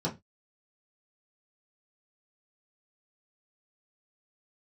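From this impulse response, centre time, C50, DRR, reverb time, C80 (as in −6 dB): 15 ms, 15.5 dB, −6.0 dB, 0.20 s, 24.0 dB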